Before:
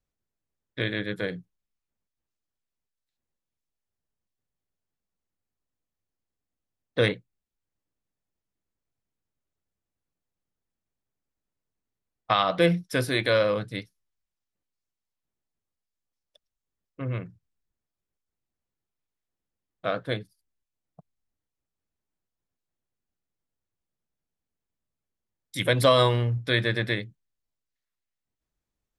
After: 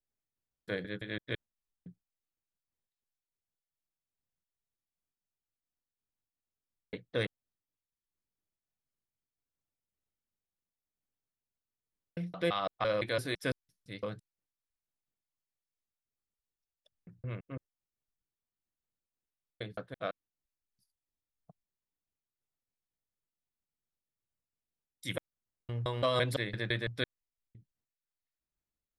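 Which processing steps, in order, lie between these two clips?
slices in reverse order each 0.169 s, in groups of 4; noise-modulated level, depth 65%; gain -5 dB

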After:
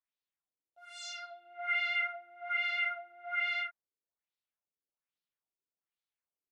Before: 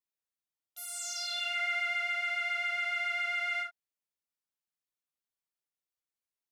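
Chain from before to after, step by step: LFO low-pass sine 1.2 Hz 380–4100 Hz; gain -3.5 dB

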